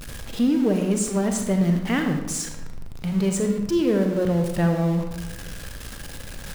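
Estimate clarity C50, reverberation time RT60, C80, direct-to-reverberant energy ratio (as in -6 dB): 5.5 dB, 1.1 s, 7.5 dB, 4.0 dB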